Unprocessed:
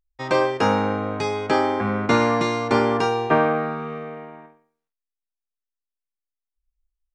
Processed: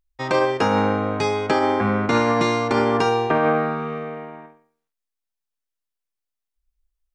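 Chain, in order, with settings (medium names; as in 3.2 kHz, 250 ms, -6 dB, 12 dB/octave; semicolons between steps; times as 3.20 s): peak limiter -12.5 dBFS, peak gain reduction 7 dB; trim +3 dB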